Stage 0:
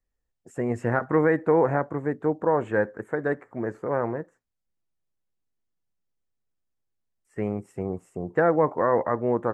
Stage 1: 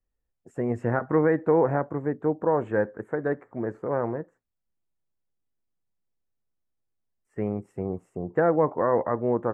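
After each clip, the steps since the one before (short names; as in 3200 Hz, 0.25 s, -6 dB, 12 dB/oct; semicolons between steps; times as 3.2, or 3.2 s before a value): high shelf 2100 Hz -10.5 dB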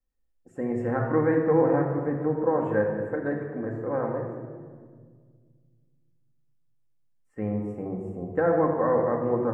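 shoebox room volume 2400 m³, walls mixed, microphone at 2.1 m; gain -4 dB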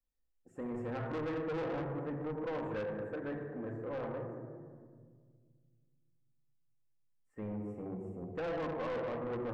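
soft clip -26.5 dBFS, distortion -8 dB; gain -7.5 dB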